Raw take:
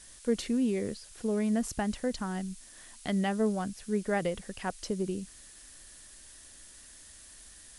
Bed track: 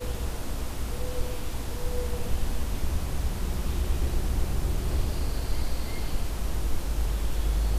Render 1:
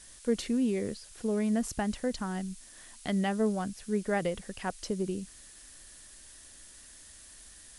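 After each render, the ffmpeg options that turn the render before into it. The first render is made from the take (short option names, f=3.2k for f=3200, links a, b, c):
-af anull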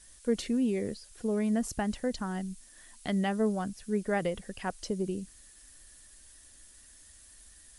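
-af "afftdn=nr=6:nf=-53"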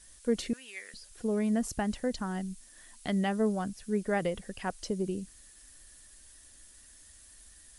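-filter_complex "[0:a]asettb=1/sr,asplit=3[a][b][c];[a]atrim=end=0.534[d];[b]atrim=start=0.53:end=0.94,asetpts=PTS-STARTPTS,afade=t=in:d=0.004:c=qsin,afade=t=out:st=0.406:d=0.004:c=qsin,highpass=f=1.7k:t=q:w=1.9[e];[c]atrim=start=0.936[f];[d][e]acrossfade=d=0.004:c1=hsin:c2=qsin[g];[g][f]acrossfade=d=0.004:c1=qsin:c2=hsin"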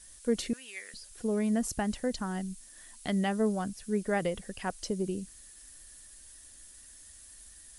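-af "highshelf=f=6.6k:g=5"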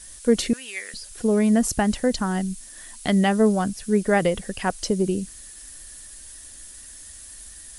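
-af "volume=10dB"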